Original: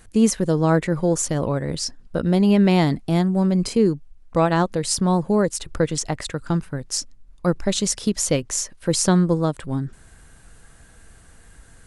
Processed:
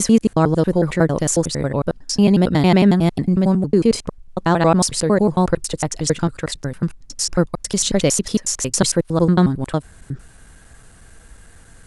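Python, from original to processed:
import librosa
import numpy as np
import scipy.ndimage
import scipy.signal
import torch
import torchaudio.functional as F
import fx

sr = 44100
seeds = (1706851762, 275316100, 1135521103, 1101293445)

y = fx.block_reorder(x, sr, ms=91.0, group=4)
y = y * 10.0 ** (3.5 / 20.0)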